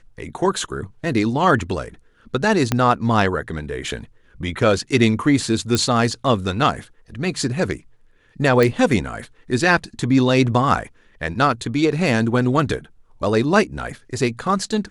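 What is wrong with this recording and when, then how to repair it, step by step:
0:02.72: click −4 dBFS
0:05.75: click
0:08.63: click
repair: click removal

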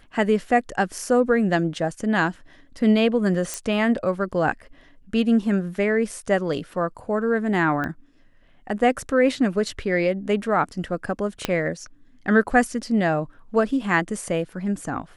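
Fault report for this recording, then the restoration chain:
0:03.54: click −12 dBFS
0:07.84: click −16 dBFS
0:11.45: click −7 dBFS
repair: click removal

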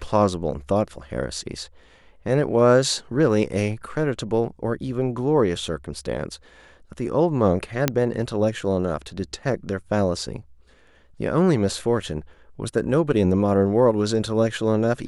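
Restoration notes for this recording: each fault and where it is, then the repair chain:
0:07.88: click −3 dBFS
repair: click removal

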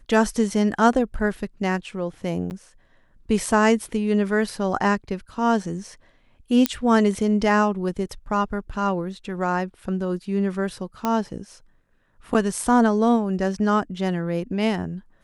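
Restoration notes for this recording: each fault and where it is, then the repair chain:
0:02.50–0:02.51: drop-out 9.7 ms
0:06.66: click −3 dBFS
0:11.05: click −10 dBFS
0:12.34–0:12.35: drop-out 8.3 ms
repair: click removal
repair the gap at 0:02.50, 9.7 ms
repair the gap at 0:12.34, 8.3 ms

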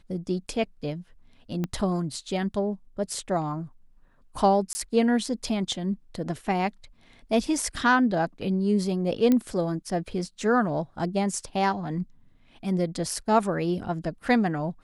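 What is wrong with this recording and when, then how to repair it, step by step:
0:01.64: click −17 dBFS
0:04.73–0:04.75: drop-out 20 ms
0:09.32: click −11 dBFS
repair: click removal
repair the gap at 0:04.73, 20 ms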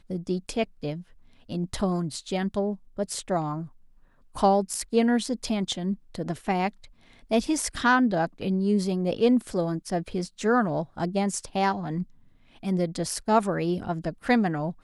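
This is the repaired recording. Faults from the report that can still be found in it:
0:01.64: click

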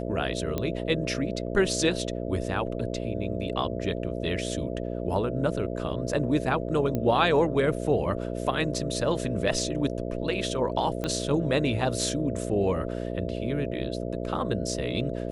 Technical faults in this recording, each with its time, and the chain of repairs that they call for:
mains buzz 60 Hz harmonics 11 −32 dBFS
0:00.58: click −15 dBFS
0:06.95: click −16 dBFS
0:11.04: click −16 dBFS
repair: click removal
hum removal 60 Hz, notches 11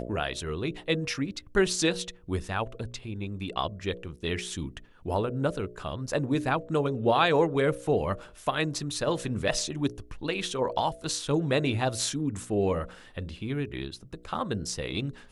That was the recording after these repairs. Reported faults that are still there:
0:06.95: click
0:11.04: click

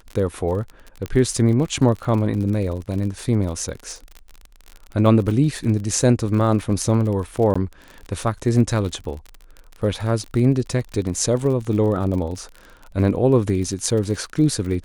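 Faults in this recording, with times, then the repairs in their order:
surface crackle 41 per second −28 dBFS
0:01.06: click −15 dBFS
0:07.54–0:07.55: drop-out 15 ms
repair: click removal
repair the gap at 0:07.54, 15 ms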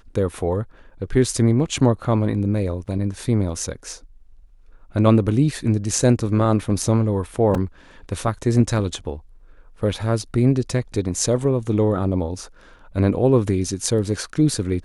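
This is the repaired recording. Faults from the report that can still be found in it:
none of them is left

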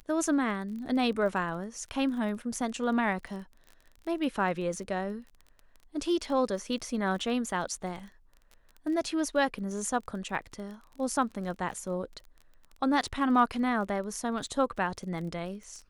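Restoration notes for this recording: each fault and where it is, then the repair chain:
surface crackle 23 per second −39 dBFS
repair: click removal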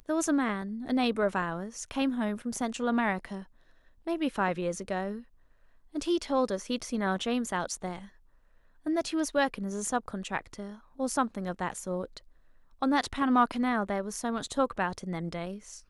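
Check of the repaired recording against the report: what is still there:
none of them is left

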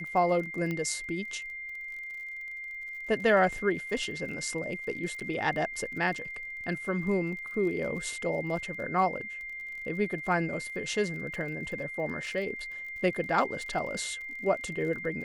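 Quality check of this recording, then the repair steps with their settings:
surface crackle 37 per second −40 dBFS
whistle 2,100 Hz −37 dBFS
0:00.71: click −21 dBFS
0:05.20–0:05.21: drop-out 7.1 ms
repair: click removal
notch filter 2,100 Hz, Q 30
repair the gap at 0:05.20, 7.1 ms

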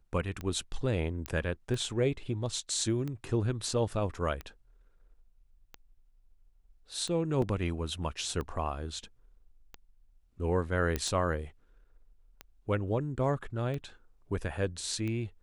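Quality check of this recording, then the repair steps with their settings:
scratch tick 45 rpm −25 dBFS
0:01.26: click −18 dBFS
0:07.42: drop-out 2.8 ms
0:10.96: click −16 dBFS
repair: click removal
repair the gap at 0:07.42, 2.8 ms

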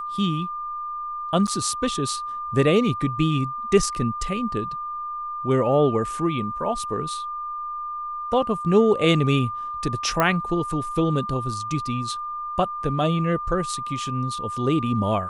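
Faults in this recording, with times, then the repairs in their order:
whistle 1,200 Hz −28 dBFS
0:01.47–0:01.48: drop-out 7.8 ms
0:10.20: click −6 dBFS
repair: click removal
notch filter 1,200 Hz, Q 30
repair the gap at 0:01.47, 7.8 ms

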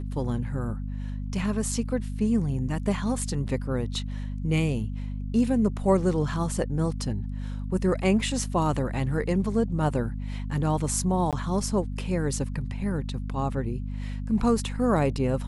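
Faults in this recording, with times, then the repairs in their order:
mains hum 50 Hz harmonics 5 −32 dBFS
0:11.31–0:11.33: drop-out 17 ms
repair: hum removal 50 Hz, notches 5
repair the gap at 0:11.31, 17 ms

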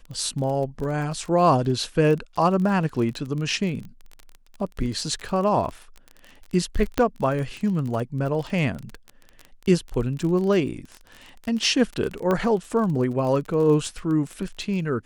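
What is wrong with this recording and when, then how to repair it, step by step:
surface crackle 28 per second −29 dBFS
0:06.98: click −8 dBFS
0:12.31: click −12 dBFS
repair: click removal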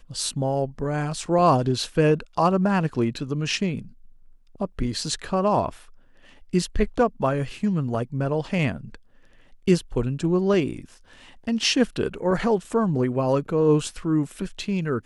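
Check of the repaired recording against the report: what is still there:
none of them is left

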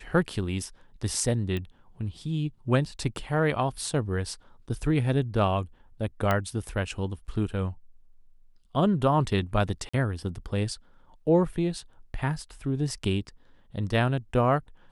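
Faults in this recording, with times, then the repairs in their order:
0:01.57: click −20 dBFS
0:06.31: click −12 dBFS
0:09.89–0:09.94: drop-out 45 ms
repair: click removal
repair the gap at 0:09.89, 45 ms

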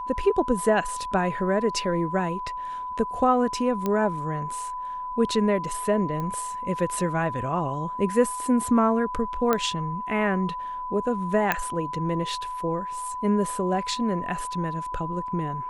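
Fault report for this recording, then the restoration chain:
whistle 1,000 Hz −30 dBFS
0:03.86: click −13 dBFS
0:06.20: click −20 dBFS
0:09.53: click −9 dBFS
0:11.52: click −8 dBFS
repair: click removal
notch filter 1,000 Hz, Q 30

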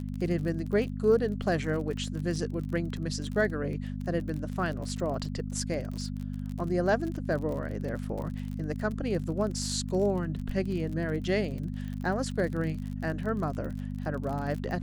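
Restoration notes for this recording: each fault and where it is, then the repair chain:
surface crackle 37 per second −35 dBFS
mains hum 50 Hz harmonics 5 −35 dBFS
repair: click removal
hum removal 50 Hz, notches 5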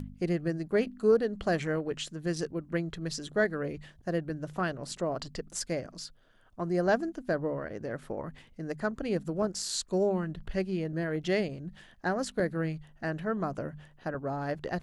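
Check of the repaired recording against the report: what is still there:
none of them is left

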